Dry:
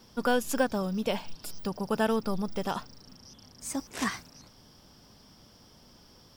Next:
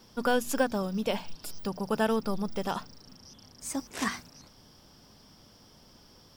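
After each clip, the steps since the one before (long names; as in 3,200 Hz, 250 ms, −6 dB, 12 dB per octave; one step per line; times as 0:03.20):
mains-hum notches 60/120/180/240 Hz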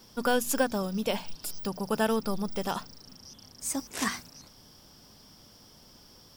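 high-shelf EQ 5,800 Hz +7.5 dB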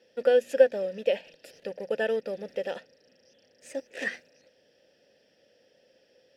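in parallel at −5 dB: centre clipping without the shift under −35 dBFS
on the sum: formant filter e
level +7.5 dB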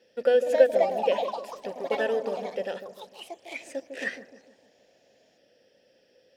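delay with pitch and tempo change per echo 327 ms, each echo +4 semitones, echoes 3, each echo −6 dB
delay with a low-pass on its return 152 ms, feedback 45%, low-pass 700 Hz, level −7 dB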